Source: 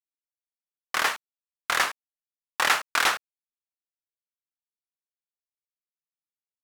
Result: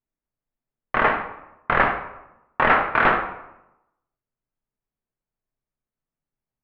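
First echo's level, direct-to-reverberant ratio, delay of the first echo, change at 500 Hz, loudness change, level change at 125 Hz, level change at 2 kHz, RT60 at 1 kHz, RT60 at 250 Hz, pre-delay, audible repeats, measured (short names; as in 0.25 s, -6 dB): none, 3.0 dB, none, +12.5 dB, +4.5 dB, n/a, +4.5 dB, 0.85 s, 0.95 s, 3 ms, none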